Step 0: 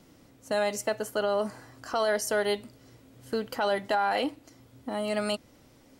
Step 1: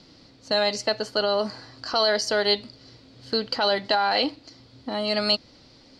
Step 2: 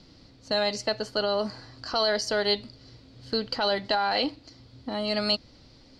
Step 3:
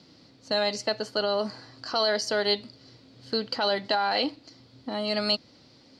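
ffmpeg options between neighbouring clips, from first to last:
-af "lowpass=f=4.5k:t=q:w=6.9,volume=3dB"
-af "lowshelf=f=110:g=11.5,volume=-3.5dB"
-af "highpass=140"

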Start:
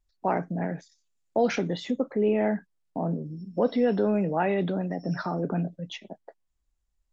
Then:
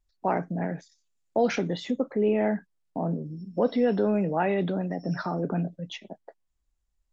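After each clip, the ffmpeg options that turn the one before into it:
-af anull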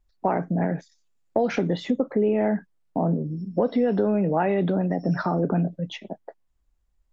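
-af "highshelf=f=2.6k:g=-9,acompressor=threshold=-25dB:ratio=6,volume=7dB"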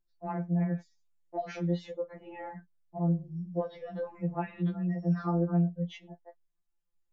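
-af "afftfilt=real='re*2.83*eq(mod(b,8),0)':imag='im*2.83*eq(mod(b,8),0)':win_size=2048:overlap=0.75,volume=-9dB"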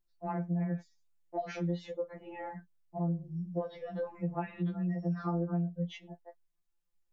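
-af "acompressor=threshold=-29dB:ratio=5"

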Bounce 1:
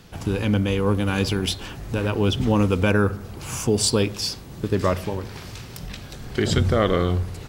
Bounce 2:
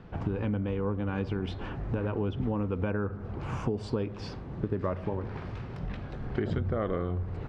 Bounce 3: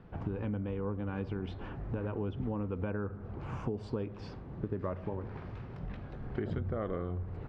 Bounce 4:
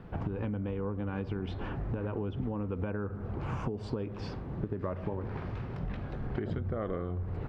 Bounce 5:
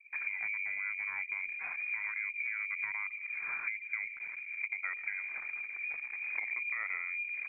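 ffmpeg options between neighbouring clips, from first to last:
-af "lowpass=1.5k,acompressor=threshold=-27dB:ratio=6"
-af "highshelf=f=3.7k:g=-8.5,volume=-5dB"
-af "acompressor=threshold=-36dB:ratio=6,volume=6dB"
-af "lowpass=f=2.1k:t=q:w=0.5098,lowpass=f=2.1k:t=q:w=0.6013,lowpass=f=2.1k:t=q:w=0.9,lowpass=f=2.1k:t=q:w=2.563,afreqshift=-2500,anlmdn=0.398,volume=-3dB"

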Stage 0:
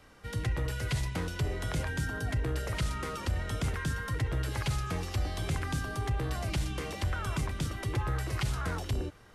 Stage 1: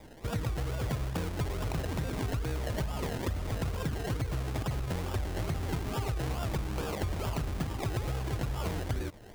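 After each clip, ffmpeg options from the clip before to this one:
-af "acrusher=samples=30:mix=1:aa=0.000001:lfo=1:lforange=18:lforate=2.3,acompressor=threshold=-36dB:ratio=6,volume=6.5dB"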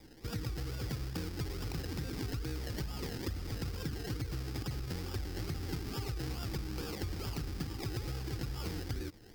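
-af "equalizer=f=315:t=o:w=0.33:g=5,equalizer=f=630:t=o:w=0.33:g=-12,equalizer=f=1k:t=o:w=0.33:g=-7,equalizer=f=5k:t=o:w=0.33:g=11,equalizer=f=16k:t=o:w=0.33:g=9,volume=-5.5dB"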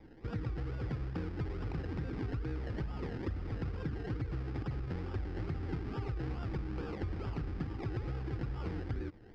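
-af "lowpass=1.9k,volume=1dB"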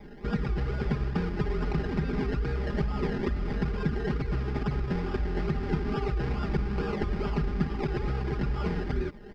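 -af "aecho=1:1:4.9:0.91,volume=8dB"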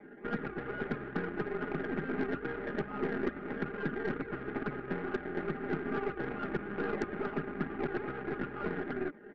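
-af "highpass=270,equalizer=f=290:t=q:w=4:g=7,equalizer=f=970:t=q:w=4:g=-7,equalizer=f=1.5k:t=q:w=4:g=7,lowpass=f=2.2k:w=0.5412,lowpass=f=2.2k:w=1.3066,aeval=exprs='0.158*(cos(1*acos(clip(val(0)/0.158,-1,1)))-cos(1*PI/2))+0.0178*(cos(5*acos(clip(val(0)/0.158,-1,1)))-cos(5*PI/2))+0.0112*(cos(7*acos(clip(val(0)/0.158,-1,1)))-cos(7*PI/2))+0.0112*(cos(8*acos(clip(val(0)/0.158,-1,1)))-cos(8*PI/2))':c=same,volume=-3.5dB"

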